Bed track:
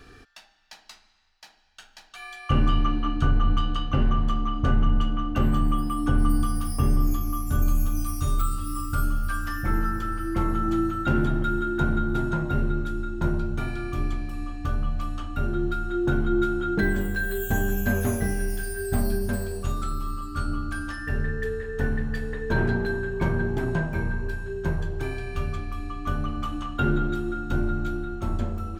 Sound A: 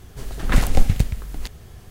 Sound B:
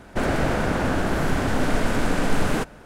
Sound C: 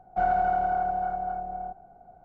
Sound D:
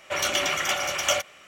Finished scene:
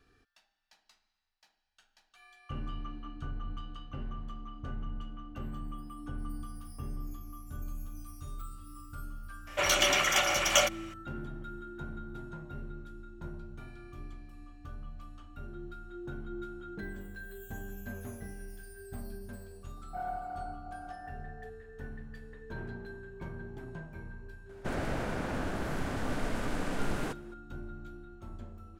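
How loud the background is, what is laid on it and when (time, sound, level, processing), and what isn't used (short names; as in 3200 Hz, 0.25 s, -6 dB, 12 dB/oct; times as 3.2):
bed track -18 dB
9.47 add D -1 dB
19.77 add C -12.5 dB + noise-modulated level
24.49 add B -12 dB
not used: A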